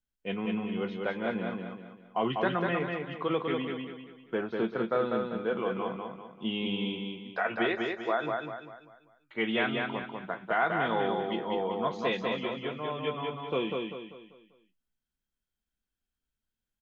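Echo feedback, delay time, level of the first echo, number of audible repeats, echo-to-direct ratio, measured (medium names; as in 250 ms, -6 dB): 40%, 196 ms, -3.5 dB, 4, -2.5 dB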